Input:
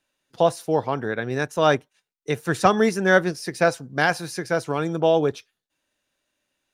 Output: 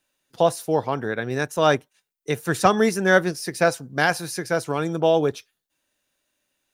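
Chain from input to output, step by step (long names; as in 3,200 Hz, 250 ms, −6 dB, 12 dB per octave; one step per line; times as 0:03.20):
high-shelf EQ 9,800 Hz +10.5 dB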